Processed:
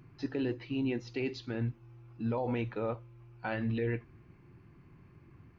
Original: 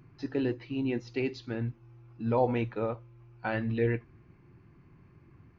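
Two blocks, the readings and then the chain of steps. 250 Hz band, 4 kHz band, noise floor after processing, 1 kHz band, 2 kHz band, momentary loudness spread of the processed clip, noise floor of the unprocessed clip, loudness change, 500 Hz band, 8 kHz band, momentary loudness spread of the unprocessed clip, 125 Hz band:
-2.5 dB, 0.0 dB, -59 dBFS, -6.0 dB, -3.0 dB, 9 LU, -59 dBFS, -3.5 dB, -5.0 dB, no reading, 10 LU, -2.5 dB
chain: peaking EQ 3.1 kHz +2 dB; peak limiter -25 dBFS, peak gain reduction 10.5 dB

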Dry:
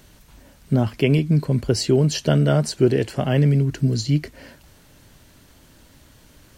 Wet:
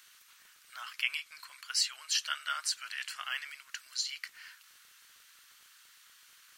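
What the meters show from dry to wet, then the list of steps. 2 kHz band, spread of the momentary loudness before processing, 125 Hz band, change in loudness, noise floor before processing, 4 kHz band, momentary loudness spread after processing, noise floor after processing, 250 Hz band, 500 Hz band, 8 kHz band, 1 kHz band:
-3.0 dB, 5 LU, under -40 dB, -14.5 dB, -52 dBFS, -2.5 dB, 17 LU, -61 dBFS, under -40 dB, under -40 dB, -3.0 dB, -9.0 dB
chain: elliptic high-pass 1.2 kHz, stop band 70 dB; crackle 32 per s -45 dBFS; trim -2.5 dB

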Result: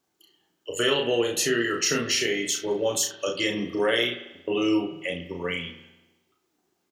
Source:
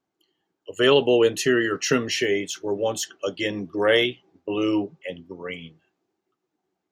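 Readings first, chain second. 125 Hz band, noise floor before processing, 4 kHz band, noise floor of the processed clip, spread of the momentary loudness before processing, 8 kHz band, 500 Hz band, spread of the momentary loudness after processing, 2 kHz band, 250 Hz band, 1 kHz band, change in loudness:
-3.5 dB, -82 dBFS, +0.5 dB, -75 dBFS, 18 LU, +5.0 dB, -4.5 dB, 9 LU, -1.5 dB, -2.5 dB, -3.0 dB, -3.0 dB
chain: treble shelf 3.3 kHz +11 dB; compression 2.5:1, threshold -29 dBFS, peak gain reduction 12 dB; on a send: early reflections 34 ms -3.5 dB, 67 ms -13.5 dB; on the sum: spring tank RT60 1 s, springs 46 ms, chirp 55 ms, DRR 9.5 dB; trim +2 dB

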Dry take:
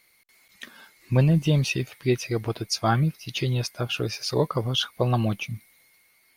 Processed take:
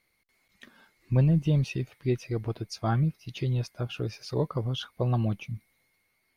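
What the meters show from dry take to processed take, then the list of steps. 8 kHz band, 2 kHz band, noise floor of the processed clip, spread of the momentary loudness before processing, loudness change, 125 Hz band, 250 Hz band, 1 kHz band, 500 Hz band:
-13.5 dB, -10.0 dB, -74 dBFS, 14 LU, -4.0 dB, -2.0 dB, -3.5 dB, -7.5 dB, -5.5 dB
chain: tilt EQ -2 dB/octave; trim -8 dB

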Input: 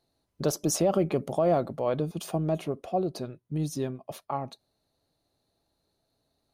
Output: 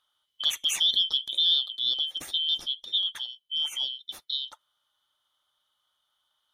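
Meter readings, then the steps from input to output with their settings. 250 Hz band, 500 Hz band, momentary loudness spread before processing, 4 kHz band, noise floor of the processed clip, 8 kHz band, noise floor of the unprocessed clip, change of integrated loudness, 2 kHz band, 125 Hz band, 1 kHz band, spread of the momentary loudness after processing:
under -25 dB, under -30 dB, 10 LU, +23.0 dB, -78 dBFS, -0.5 dB, -78 dBFS, +3.5 dB, +3.5 dB, under -30 dB, -19.5 dB, 10 LU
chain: four frequency bands reordered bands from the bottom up 3412

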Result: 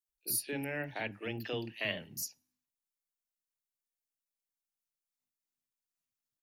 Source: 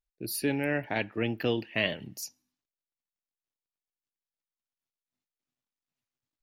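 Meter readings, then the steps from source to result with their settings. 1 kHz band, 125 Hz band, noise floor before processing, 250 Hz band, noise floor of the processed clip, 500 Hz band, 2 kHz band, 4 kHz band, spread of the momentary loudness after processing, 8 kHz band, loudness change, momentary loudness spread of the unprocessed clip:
-7.5 dB, -8.0 dB, under -85 dBFS, -10.0 dB, under -85 dBFS, -8.5 dB, -6.0 dB, -5.5 dB, 7 LU, +1.5 dB, -6.0 dB, 11 LU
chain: treble shelf 4.1 kHz +11 dB; three bands offset in time highs, mids, lows 50/90 ms, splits 300/3600 Hz; trim -7.5 dB

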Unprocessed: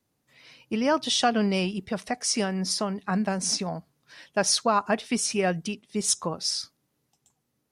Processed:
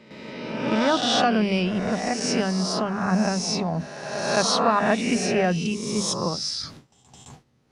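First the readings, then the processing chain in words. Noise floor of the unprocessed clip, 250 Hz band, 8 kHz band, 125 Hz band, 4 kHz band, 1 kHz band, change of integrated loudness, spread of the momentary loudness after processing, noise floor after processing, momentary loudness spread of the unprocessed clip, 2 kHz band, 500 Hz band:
-77 dBFS, +4.5 dB, -2.0 dB, +5.5 dB, +2.0 dB, +4.0 dB, +2.5 dB, 10 LU, -60 dBFS, 10 LU, +4.5 dB, +4.0 dB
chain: reverse spectral sustain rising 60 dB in 0.94 s; hum notches 50/100/150/200/250/300 Hz; reverse; upward compressor, threshold -23 dBFS; reverse; low-pass 5.7 kHz 12 dB/octave; tone controls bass +5 dB, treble -2 dB; gate with hold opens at -33 dBFS; on a send: reverse echo 214 ms -12 dB

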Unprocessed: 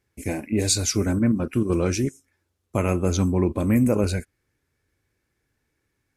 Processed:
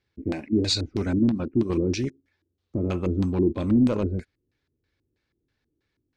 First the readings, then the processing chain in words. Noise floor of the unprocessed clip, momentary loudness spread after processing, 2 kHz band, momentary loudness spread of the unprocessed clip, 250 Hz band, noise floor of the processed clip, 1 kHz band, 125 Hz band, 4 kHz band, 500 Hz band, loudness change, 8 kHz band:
-76 dBFS, 11 LU, -6.5 dB, 9 LU, -0.5 dB, -79 dBFS, -6.0 dB, -3.5 dB, 0.0 dB, -2.5 dB, -2.0 dB, under -10 dB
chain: hard clipper -14.5 dBFS, distortion -17 dB; LFO low-pass square 3.1 Hz 330–4100 Hz; trim -3.5 dB

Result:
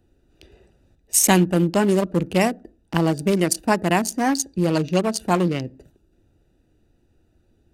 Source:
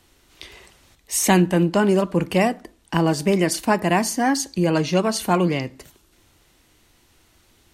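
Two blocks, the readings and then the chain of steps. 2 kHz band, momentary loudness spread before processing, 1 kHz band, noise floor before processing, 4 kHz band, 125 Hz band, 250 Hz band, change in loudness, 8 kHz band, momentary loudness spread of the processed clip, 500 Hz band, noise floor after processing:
-1.5 dB, 6 LU, -1.0 dB, -59 dBFS, -1.0 dB, 0.0 dB, -0.5 dB, 0.0 dB, +3.0 dB, 7 LU, -1.0 dB, -64 dBFS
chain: local Wiener filter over 41 samples; treble shelf 4.1 kHz +10 dB

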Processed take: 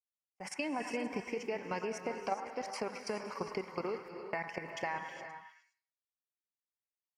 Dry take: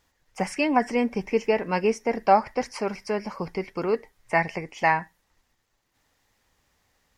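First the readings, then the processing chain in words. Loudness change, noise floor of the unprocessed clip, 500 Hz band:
-14.0 dB, -72 dBFS, -13.5 dB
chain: fade-in on the opening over 0.86 s; level held to a coarse grid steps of 14 dB; high-pass 220 Hz 6 dB/octave; gate -47 dBFS, range -40 dB; compression, threshold -34 dBFS, peak gain reduction 18.5 dB; on a send: repeats whose band climbs or falls 105 ms, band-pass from 1.2 kHz, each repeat 0.7 oct, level -6 dB; on the sum: gated-style reverb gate 440 ms rising, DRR 8 dB

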